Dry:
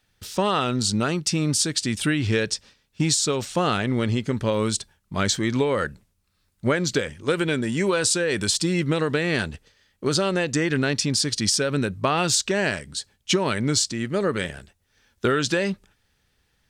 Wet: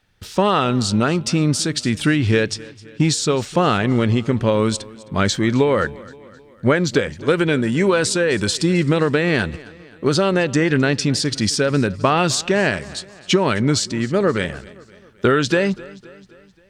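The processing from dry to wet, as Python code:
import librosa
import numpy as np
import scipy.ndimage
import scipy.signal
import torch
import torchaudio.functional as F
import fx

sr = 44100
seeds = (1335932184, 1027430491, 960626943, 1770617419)

p1 = fx.high_shelf(x, sr, hz=4600.0, db=-10.0)
p2 = p1 + fx.echo_feedback(p1, sr, ms=262, feedback_pct=53, wet_db=-21.0, dry=0)
y = F.gain(torch.from_numpy(p2), 6.0).numpy()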